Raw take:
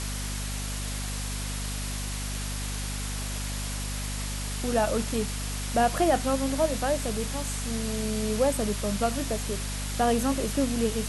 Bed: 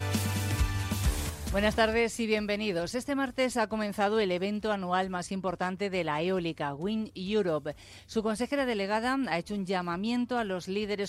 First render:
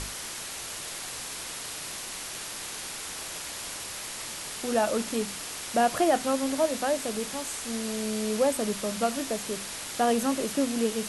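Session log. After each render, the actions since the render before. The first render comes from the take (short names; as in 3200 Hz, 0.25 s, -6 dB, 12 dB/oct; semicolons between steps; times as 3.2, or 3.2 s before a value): notches 50/100/150/200/250 Hz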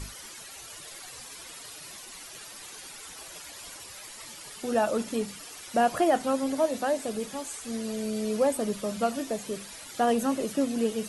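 denoiser 12 dB, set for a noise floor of -38 dBFS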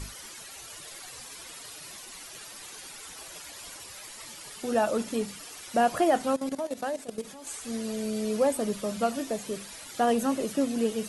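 6.36–7.47 level quantiser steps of 15 dB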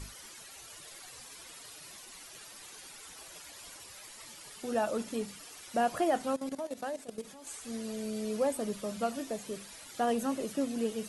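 gain -5.5 dB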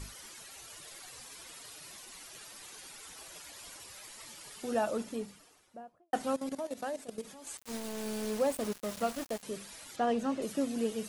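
4.71–6.13 studio fade out; 7.57–9.43 sample gate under -38 dBFS; 9.96–10.42 air absorption 85 m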